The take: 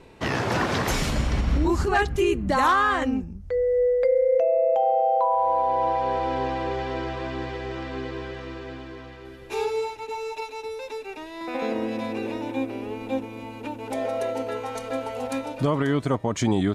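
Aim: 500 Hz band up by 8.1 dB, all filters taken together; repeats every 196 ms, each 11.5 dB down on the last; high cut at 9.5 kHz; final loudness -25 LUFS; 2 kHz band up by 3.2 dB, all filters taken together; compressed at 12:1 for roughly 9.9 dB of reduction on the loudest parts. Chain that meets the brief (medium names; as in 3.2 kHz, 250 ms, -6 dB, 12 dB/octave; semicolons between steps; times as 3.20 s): low-pass 9.5 kHz; peaking EQ 500 Hz +9 dB; peaking EQ 2 kHz +3.5 dB; compression 12:1, threshold -18 dBFS; feedback delay 196 ms, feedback 27%, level -11.5 dB; trim -0.5 dB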